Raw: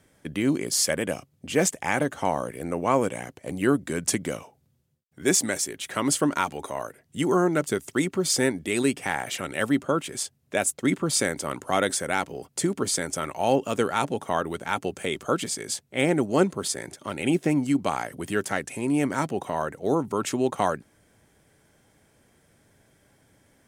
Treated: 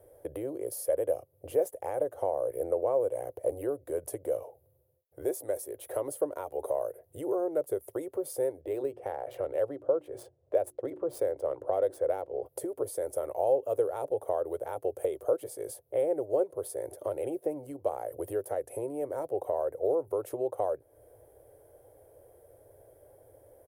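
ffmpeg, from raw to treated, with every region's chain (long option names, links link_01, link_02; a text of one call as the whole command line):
ffmpeg -i in.wav -filter_complex "[0:a]asettb=1/sr,asplit=3[link_01][link_02][link_03];[link_01]atrim=end=8.614[link_04];[link_02]atrim=start=8.61:end=12.46,asetpts=PTS-STARTPTS,afade=type=in:duration=0.004:curve=qsin,afade=type=out:start_time=3.846:duration=0.004:curve=qsin,adynamicsmooth=sensitivity=2:basefreq=3300,bandreject=frequency=60:width_type=h:width=6,bandreject=frequency=120:width_type=h:width=6,bandreject=frequency=180:width_type=h:width=6,bandreject=frequency=240:width_type=h:width=6,bandreject=frequency=300:width_type=h:width=6,bandreject=frequency=360:width_type=h:width=6[link_05];[link_03]atrim=start=12.456[link_06];[link_04][link_05]acrossfade=duration=0.004:curve1=hsin:curve2=qsin[link_07];[link_07][link_06]acrossfade=duration=0.004:curve1=qsin:curve2=hsin,acompressor=threshold=-37dB:ratio=3,firequalizer=gain_entry='entry(110,0);entry(200,-30);entry(310,-2);entry(510,14);entry(850,-1);entry(1300,-11);entry(2300,-18);entry(7400,-17);entry(11000,5)':delay=0.05:min_phase=1,volume=1.5dB" out.wav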